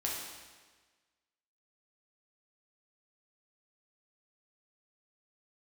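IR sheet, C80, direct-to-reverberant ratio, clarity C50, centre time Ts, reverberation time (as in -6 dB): 3.0 dB, -4.0 dB, 1.0 dB, 75 ms, 1.4 s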